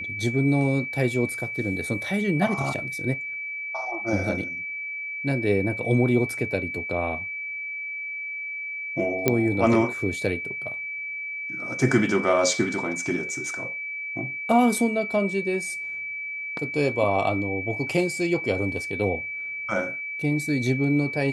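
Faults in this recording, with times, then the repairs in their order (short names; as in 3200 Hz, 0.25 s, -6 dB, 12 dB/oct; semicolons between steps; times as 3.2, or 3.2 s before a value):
tone 2300 Hz -30 dBFS
9.28 pop -5 dBFS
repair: de-click; notch 2300 Hz, Q 30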